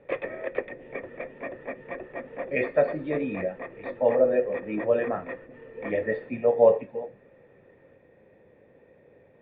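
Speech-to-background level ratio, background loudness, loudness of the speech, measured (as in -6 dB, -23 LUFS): 12.0 dB, -38.0 LUFS, -26.0 LUFS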